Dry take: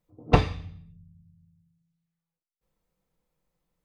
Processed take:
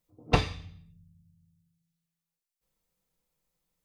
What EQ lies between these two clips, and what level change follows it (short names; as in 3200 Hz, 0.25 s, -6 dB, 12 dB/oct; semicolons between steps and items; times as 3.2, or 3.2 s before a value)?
high shelf 2500 Hz +11 dB; -5.5 dB